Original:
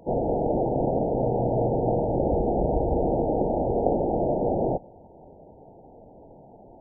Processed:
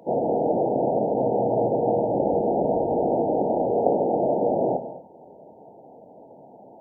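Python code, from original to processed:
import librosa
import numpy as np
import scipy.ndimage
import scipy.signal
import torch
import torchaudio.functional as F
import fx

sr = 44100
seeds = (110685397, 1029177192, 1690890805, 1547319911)

y = scipy.signal.sosfilt(scipy.signal.butter(2, 210.0, 'highpass', fs=sr, output='sos'), x)
y = fx.peak_eq(y, sr, hz=340.0, db=-2.5, octaves=0.77)
y = fx.rev_gated(y, sr, seeds[0], gate_ms=260, shape='flat', drr_db=8.5)
y = y * librosa.db_to_amplitude(3.0)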